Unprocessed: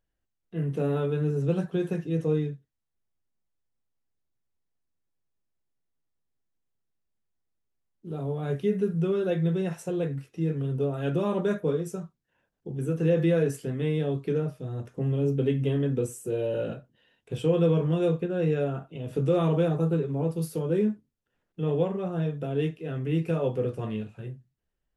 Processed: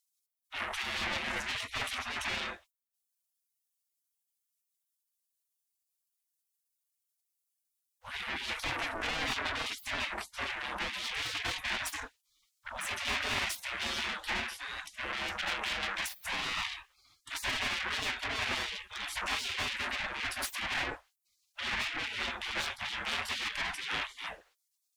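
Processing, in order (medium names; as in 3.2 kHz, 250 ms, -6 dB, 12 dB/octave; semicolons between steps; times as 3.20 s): 1.04–1.73 s: high-pass 190 Hz 12 dB/octave; overdrive pedal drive 35 dB, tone 1 kHz, clips at -12 dBFS; spectral gate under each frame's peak -30 dB weak; trim +6.5 dB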